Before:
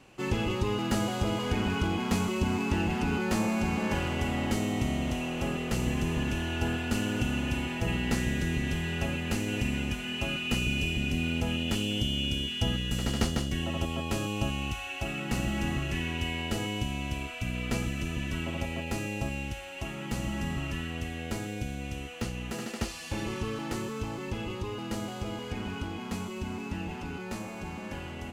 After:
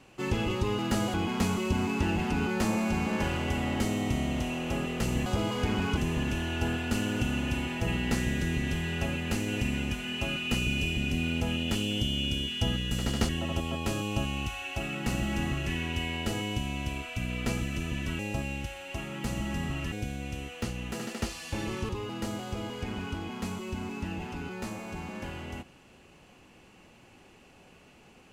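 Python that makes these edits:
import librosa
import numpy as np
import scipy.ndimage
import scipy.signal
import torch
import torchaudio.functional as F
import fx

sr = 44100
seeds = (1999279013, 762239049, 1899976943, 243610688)

y = fx.edit(x, sr, fx.move(start_s=1.14, length_s=0.71, to_s=5.97),
    fx.cut(start_s=13.29, length_s=0.25),
    fx.cut(start_s=18.44, length_s=0.62),
    fx.cut(start_s=20.79, length_s=0.72),
    fx.cut(start_s=23.48, length_s=1.1), tone=tone)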